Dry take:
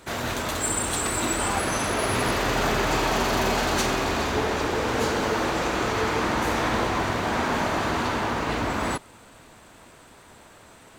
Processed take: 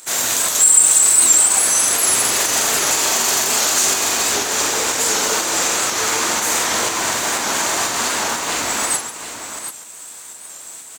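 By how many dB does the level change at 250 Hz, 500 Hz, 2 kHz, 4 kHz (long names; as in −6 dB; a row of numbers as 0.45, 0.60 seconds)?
−4.0, −0.5, +5.0, +10.5 decibels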